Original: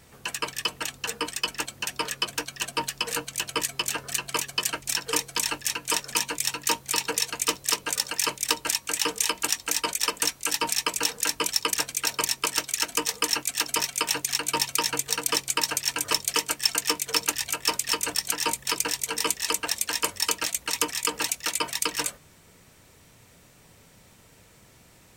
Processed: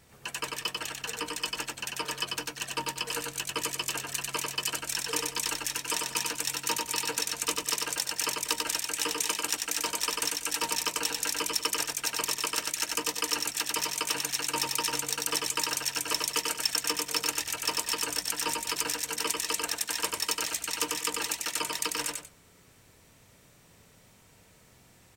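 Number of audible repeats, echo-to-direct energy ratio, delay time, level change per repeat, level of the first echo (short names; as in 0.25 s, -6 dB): 2, -2.5 dB, 94 ms, -11.5 dB, -3.0 dB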